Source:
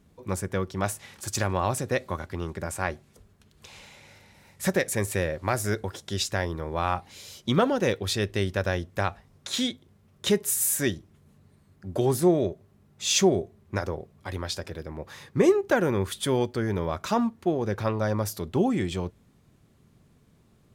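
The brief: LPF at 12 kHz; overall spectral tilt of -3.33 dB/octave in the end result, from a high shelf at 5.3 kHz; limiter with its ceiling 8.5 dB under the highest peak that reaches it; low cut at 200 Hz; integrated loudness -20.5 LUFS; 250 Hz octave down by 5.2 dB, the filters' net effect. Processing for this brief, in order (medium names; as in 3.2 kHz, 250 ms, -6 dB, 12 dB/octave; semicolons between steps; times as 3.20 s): high-pass 200 Hz; low-pass 12 kHz; peaking EQ 250 Hz -5.5 dB; treble shelf 5.3 kHz -3.5 dB; trim +11.5 dB; peak limiter -6.5 dBFS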